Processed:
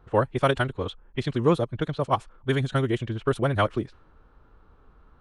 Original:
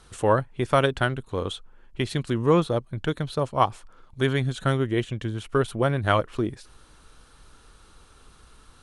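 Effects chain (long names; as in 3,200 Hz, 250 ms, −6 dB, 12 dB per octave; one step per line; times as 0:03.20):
low-pass that shuts in the quiet parts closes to 1,100 Hz, open at −19.5 dBFS
phase-vocoder stretch with locked phases 0.59×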